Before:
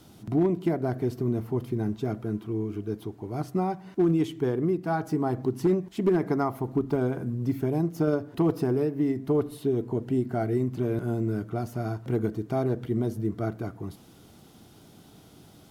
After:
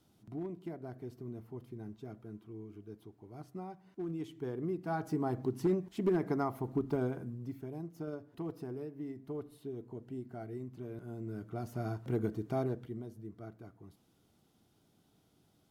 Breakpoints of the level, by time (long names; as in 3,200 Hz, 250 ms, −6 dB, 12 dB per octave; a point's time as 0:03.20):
0:04.01 −17 dB
0:05.05 −7 dB
0:07.03 −7 dB
0:07.60 −16.5 dB
0:11.06 −16.5 dB
0:11.79 −6.5 dB
0:12.61 −6.5 dB
0:13.06 −18 dB